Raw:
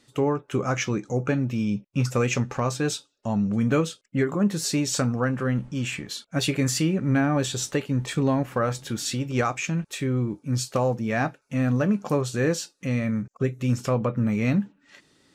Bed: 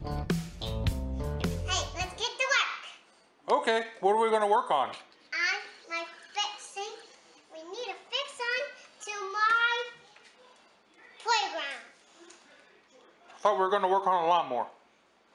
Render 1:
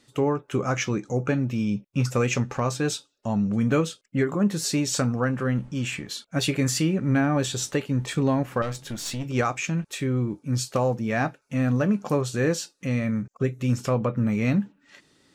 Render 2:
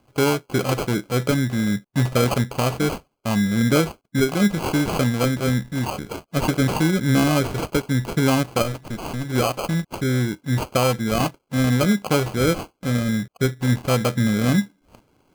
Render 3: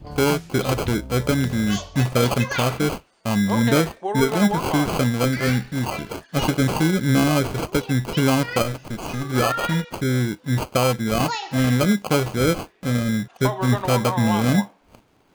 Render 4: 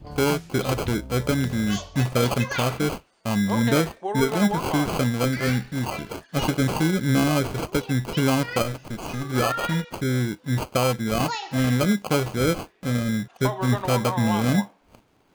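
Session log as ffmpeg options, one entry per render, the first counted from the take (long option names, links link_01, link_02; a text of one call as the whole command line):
ffmpeg -i in.wav -filter_complex "[0:a]asettb=1/sr,asplit=3[link_01][link_02][link_03];[link_01]atrim=end=8.624[link_04];[link_02]atrim=start=8.62:end=9.24,asetpts=PTS-STARTPTS,afade=type=in:duration=0.004:curve=qsin,afade=type=out:start_time=0.616:duration=0.004:curve=qsin,aeval=exprs='(tanh(17.8*val(0)+0.45)-tanh(0.45))/17.8':channel_layout=same[link_05];[link_03]atrim=start=9.236[link_06];[link_04][link_05]acrossfade=duration=0.004:curve1=hsin:curve2=qsin[link_07];[link_07][link_06]acrossfade=duration=0.004:curve1=qsin:curve2=hsin" out.wav
ffmpeg -i in.wav -filter_complex "[0:a]asplit=2[link_01][link_02];[link_02]aeval=exprs='sgn(val(0))*max(abs(val(0))-0.00891,0)':channel_layout=same,volume=-4dB[link_03];[link_01][link_03]amix=inputs=2:normalize=0,acrusher=samples=24:mix=1:aa=0.000001" out.wav
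ffmpeg -i in.wav -i bed.wav -filter_complex "[1:a]volume=-1.5dB[link_01];[0:a][link_01]amix=inputs=2:normalize=0" out.wav
ffmpeg -i in.wav -af "volume=-2.5dB" out.wav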